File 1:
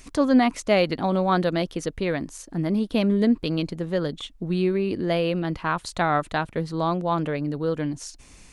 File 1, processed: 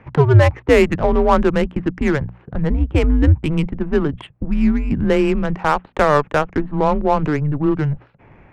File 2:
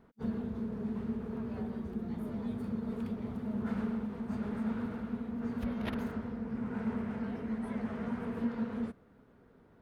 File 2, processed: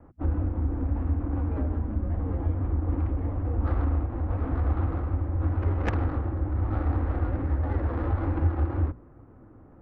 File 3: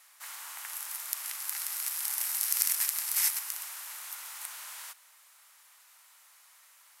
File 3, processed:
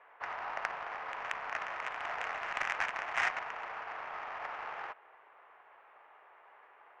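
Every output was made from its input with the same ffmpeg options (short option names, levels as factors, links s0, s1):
-filter_complex "[0:a]highpass=f=180:t=q:w=0.5412,highpass=f=180:t=q:w=1.307,lowpass=f=3000:t=q:w=0.5176,lowpass=f=3000:t=q:w=0.7071,lowpass=f=3000:t=q:w=1.932,afreqshift=-150,asplit=2[s0][s1];[s1]acompressor=threshold=0.0178:ratio=6,volume=1[s2];[s0][s2]amix=inputs=2:normalize=0,bandreject=f=60:t=h:w=6,bandreject=f=120:t=h:w=6,bandreject=f=180:t=h:w=6,bandreject=f=240:t=h:w=6,adynamicsmooth=sensitivity=2.5:basefreq=1200,volume=2.24"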